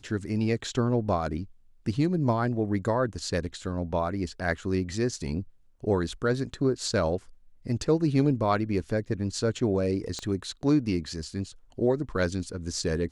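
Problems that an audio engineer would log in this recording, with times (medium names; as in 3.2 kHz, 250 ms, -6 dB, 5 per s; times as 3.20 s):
10.19 s: pop -21 dBFS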